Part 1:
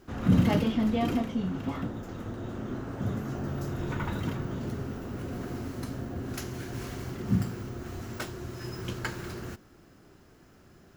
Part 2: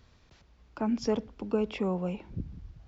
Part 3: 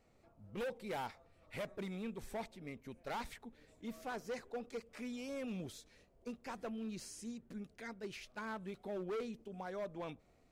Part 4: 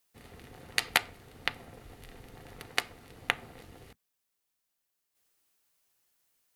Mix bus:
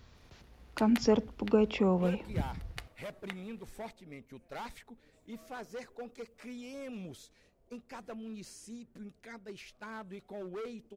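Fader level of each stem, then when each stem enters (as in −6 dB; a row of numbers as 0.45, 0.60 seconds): muted, +2.5 dB, −0.5 dB, −15.0 dB; muted, 0.00 s, 1.45 s, 0.00 s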